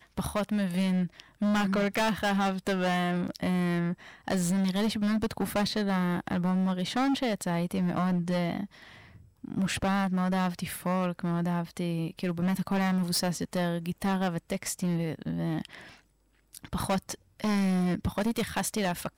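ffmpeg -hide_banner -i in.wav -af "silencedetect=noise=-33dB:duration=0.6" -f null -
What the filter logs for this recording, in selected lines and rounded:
silence_start: 8.65
silence_end: 9.44 | silence_duration: 0.80
silence_start: 15.75
silence_end: 16.55 | silence_duration: 0.80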